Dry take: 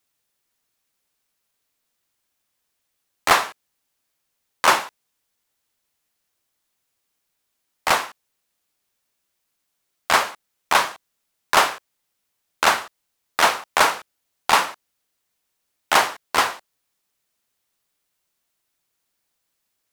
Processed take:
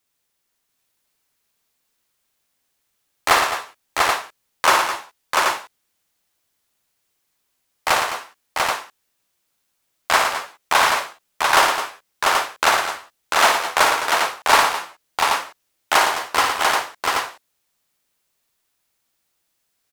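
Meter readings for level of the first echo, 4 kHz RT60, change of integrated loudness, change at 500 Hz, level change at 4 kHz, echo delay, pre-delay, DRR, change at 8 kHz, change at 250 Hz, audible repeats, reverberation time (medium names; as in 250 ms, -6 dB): -6.0 dB, no reverb, +1.0 dB, +3.5 dB, +3.5 dB, 58 ms, no reverb, no reverb, +3.5 dB, +1.5 dB, 5, no reverb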